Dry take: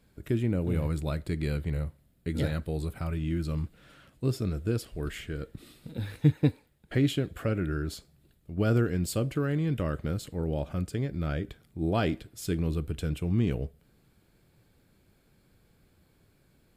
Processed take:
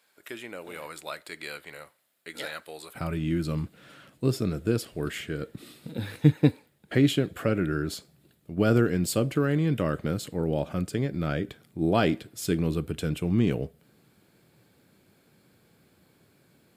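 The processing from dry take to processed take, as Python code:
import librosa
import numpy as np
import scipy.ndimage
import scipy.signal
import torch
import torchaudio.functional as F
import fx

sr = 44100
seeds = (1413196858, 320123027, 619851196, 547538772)

y = fx.highpass(x, sr, hz=fx.steps((0.0, 860.0), (2.95, 140.0)), slope=12)
y = y * librosa.db_to_amplitude(5.0)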